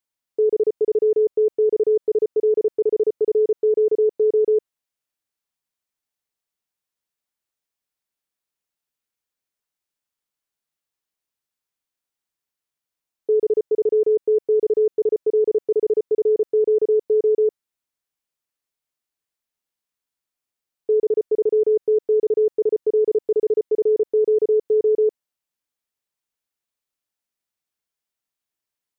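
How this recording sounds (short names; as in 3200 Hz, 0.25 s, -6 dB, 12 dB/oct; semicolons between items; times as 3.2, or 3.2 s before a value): noise floor -87 dBFS; spectral tilt -0.5 dB/oct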